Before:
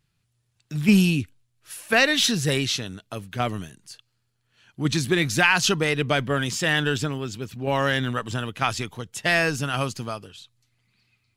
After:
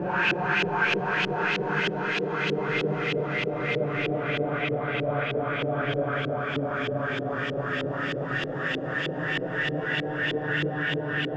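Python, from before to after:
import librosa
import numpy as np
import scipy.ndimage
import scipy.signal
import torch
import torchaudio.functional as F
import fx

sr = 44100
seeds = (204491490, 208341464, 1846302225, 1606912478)

y = fx.paulstretch(x, sr, seeds[0], factor=8.1, window_s=1.0, from_s=5.48)
y = fx.filter_lfo_lowpass(y, sr, shape='saw_up', hz=3.2, low_hz=390.0, high_hz=3300.0, q=2.2)
y = y * librosa.db_to_amplitude(-6.0)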